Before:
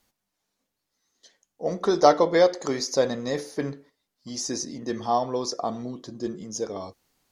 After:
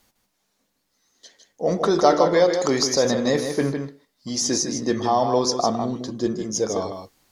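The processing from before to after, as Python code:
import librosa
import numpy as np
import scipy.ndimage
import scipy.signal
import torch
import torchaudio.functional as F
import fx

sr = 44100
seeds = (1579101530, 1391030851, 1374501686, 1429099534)

p1 = fx.over_compress(x, sr, threshold_db=-26.0, ratio=-1.0)
p2 = x + (p1 * 10.0 ** (1.0 / 20.0))
p3 = p2 + 10.0 ** (-7.0 / 20.0) * np.pad(p2, (int(155 * sr / 1000.0), 0))[:len(p2)]
y = p3 * 10.0 ** (-1.0 / 20.0)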